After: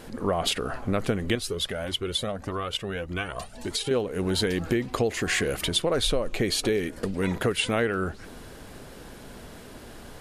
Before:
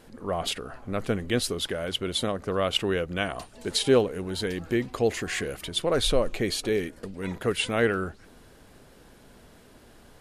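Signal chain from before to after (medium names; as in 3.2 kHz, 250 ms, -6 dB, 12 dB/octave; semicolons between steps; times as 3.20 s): compression 6:1, threshold -31 dBFS, peak gain reduction 15 dB; 1.35–3.91 s: Shepard-style flanger rising 1.7 Hz; trim +9 dB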